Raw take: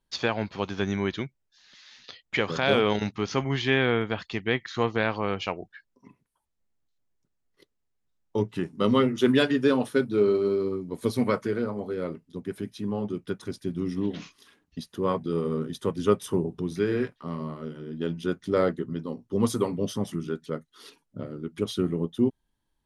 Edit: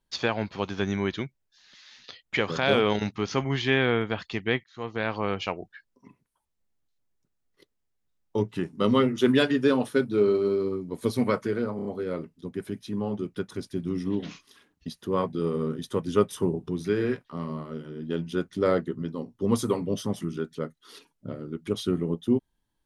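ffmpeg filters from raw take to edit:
-filter_complex "[0:a]asplit=5[s0][s1][s2][s3][s4];[s0]atrim=end=4.64,asetpts=PTS-STARTPTS,afade=t=out:st=4.636:d=0.004:c=hsin[s5];[s1]atrim=start=4.64:end=11.792,asetpts=PTS-STARTPTS,afade=t=in:d=0.57[s6];[s2]atrim=start=11.758:end=11.792[s7];[s3]atrim=start=11.758:end=11.792[s8];[s4]atrim=start=11.758[s9];[s5][s6]concat=n=2:v=0:a=1[s10];[s10][s7]acrossfade=d=0.004:c1=hsin:c2=hsin[s11];[s11][s8]acrossfade=d=0.004:c1=hsin:c2=hsin[s12];[s12][s9]acrossfade=d=0.004:c1=hsin:c2=hsin"

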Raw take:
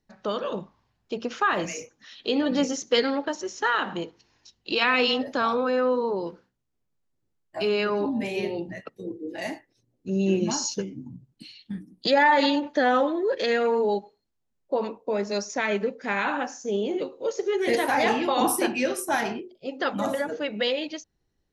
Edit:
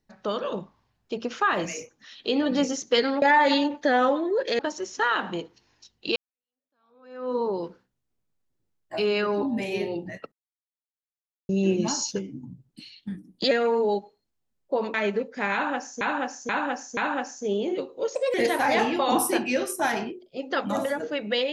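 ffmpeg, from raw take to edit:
-filter_complex "[0:a]asplit=13[s0][s1][s2][s3][s4][s5][s6][s7][s8][s9][s10][s11][s12];[s0]atrim=end=3.222[s13];[s1]atrim=start=12.138:end=13.512[s14];[s2]atrim=start=3.218:end=4.79,asetpts=PTS-STARTPTS,afade=t=out:st=1.568:d=0.004:c=hsin[s15];[s3]atrim=start=4.79:end=8.95,asetpts=PTS-STARTPTS,afade=t=in:d=1.2:c=exp,afade=t=out:st=4.156:d=0.004:c=hsin[s16];[s4]atrim=start=8.95:end=10.12,asetpts=PTS-STARTPTS,volume=0[s17];[s5]atrim=start=10.12:end=12.142,asetpts=PTS-STARTPTS,afade=t=in:d=0.004:c=hsin[s18];[s6]atrim=start=13.508:end=14.942[s19];[s7]atrim=start=15.608:end=16.682[s20];[s8]atrim=start=16.198:end=16.682[s21];[s9]atrim=start=16.198:end=16.682[s22];[s10]atrim=start=16.198:end=17.384[s23];[s11]atrim=start=17.38:end=17.63,asetpts=PTS-STARTPTS,asetrate=57771,aresample=44100,atrim=end_sample=8416,asetpts=PTS-STARTPTS[s24];[s12]atrim=start=17.626[s25];[s13][s14]acrossfade=d=0.004:c1=hsin:c2=hsin[s26];[s15][s16][s17][s18]concat=n=4:v=0:a=1[s27];[s26][s27]acrossfade=d=0.004:c1=hsin:c2=hsin[s28];[s28][s19]acrossfade=d=0.004:c1=hsin:c2=hsin[s29];[s29][s20]acrossfade=d=0.004:c1=hsin:c2=hsin[s30];[s30][s21]acrossfade=d=0.004:c1=hsin:c2=hsin[s31];[s31][s22]acrossfade=d=0.004:c1=hsin:c2=hsin[s32];[s32][s23]acrossfade=d=0.004:c1=hsin:c2=hsin[s33];[s33][s24]acrossfade=d=0.004:c1=hsin:c2=hsin[s34];[s34][s25]acrossfade=d=0.004:c1=hsin:c2=hsin"

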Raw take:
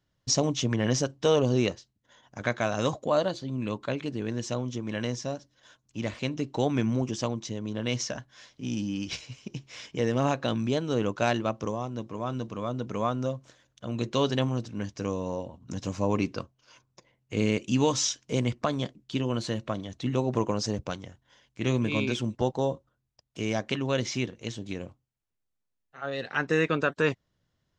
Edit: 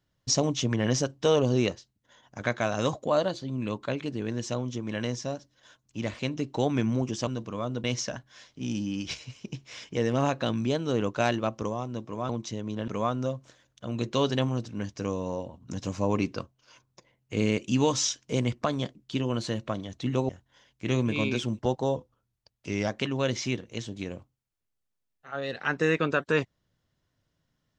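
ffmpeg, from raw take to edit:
-filter_complex "[0:a]asplit=8[s0][s1][s2][s3][s4][s5][s6][s7];[s0]atrim=end=7.272[s8];[s1]atrim=start=12.308:end=12.882[s9];[s2]atrim=start=7.858:end=12.312[s10];[s3]atrim=start=7.268:end=7.862[s11];[s4]atrim=start=12.878:end=20.292[s12];[s5]atrim=start=21.048:end=22.724[s13];[s6]atrim=start=22.72:end=23.57,asetpts=PTS-STARTPTS,asetrate=41013,aresample=44100,atrim=end_sample=40306,asetpts=PTS-STARTPTS[s14];[s7]atrim=start=23.566[s15];[s8][s9]acrossfade=d=0.004:c1=hsin:c2=hsin[s16];[s16][s10]acrossfade=d=0.004:c1=hsin:c2=hsin[s17];[s17][s11]acrossfade=d=0.004:c1=hsin:c2=hsin[s18];[s18][s12]acrossfade=d=0.004:c1=hsin:c2=hsin[s19];[s19][s13]acrossfade=d=0.004:c1=hsin:c2=hsin[s20];[s20][s14]acrossfade=d=0.004:c1=hsin:c2=hsin[s21];[s21][s15]acrossfade=d=0.004:c1=hsin:c2=hsin"

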